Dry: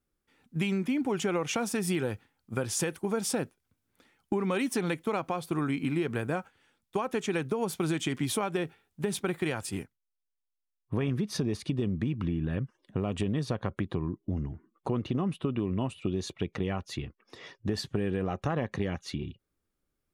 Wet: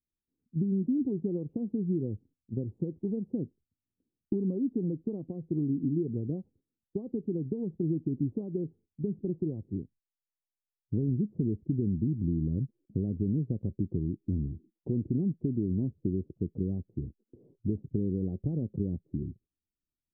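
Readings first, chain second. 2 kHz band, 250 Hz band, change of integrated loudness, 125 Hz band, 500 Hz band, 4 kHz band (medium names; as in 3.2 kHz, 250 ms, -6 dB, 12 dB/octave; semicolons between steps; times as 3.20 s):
under -40 dB, +1.0 dB, -1.0 dB, +1.5 dB, -5.0 dB, under -40 dB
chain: gate -56 dBFS, range -14 dB; inverse Chebyshev low-pass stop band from 1.6 kHz, stop band 70 dB; trim +1.5 dB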